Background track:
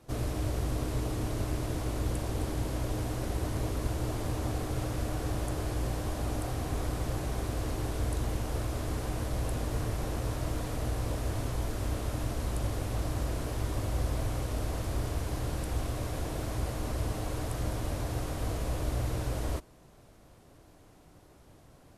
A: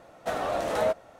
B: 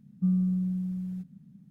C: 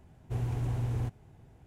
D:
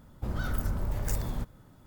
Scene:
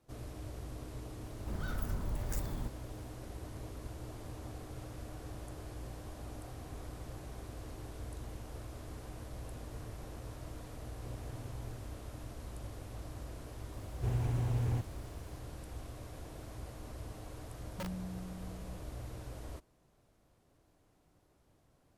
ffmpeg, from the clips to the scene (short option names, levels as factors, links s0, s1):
-filter_complex "[3:a]asplit=2[s0][s1];[0:a]volume=0.224[s2];[s1]acrusher=bits=10:mix=0:aa=0.000001[s3];[2:a]aeval=exprs='(mod(10*val(0)+1,2)-1)/10':c=same[s4];[4:a]atrim=end=1.86,asetpts=PTS-STARTPTS,volume=0.473,afade=t=in:d=0.004:c=hsin,afade=t=out:st=1.856:d=0.004:c=hsin,adelay=1240[s5];[s0]atrim=end=1.66,asetpts=PTS-STARTPTS,volume=0.2,afade=t=in:d=0.004:c=hsin,afade=t=out:st=1.656:d=0.004:c=hsin,adelay=10710[s6];[s3]atrim=end=1.66,asetpts=PTS-STARTPTS,volume=0.891,afade=t=in:d=0.004:c=hsin,afade=t=out:st=1.656:d=0.004:c=hsin,adelay=13720[s7];[s4]atrim=end=1.7,asetpts=PTS-STARTPTS,volume=0.15,afade=t=in:d=0.004:c=hsin,afade=t=out:st=1.696:d=0.004:c=hsin,adelay=17560[s8];[s2][s5][s6][s7][s8]amix=inputs=5:normalize=0"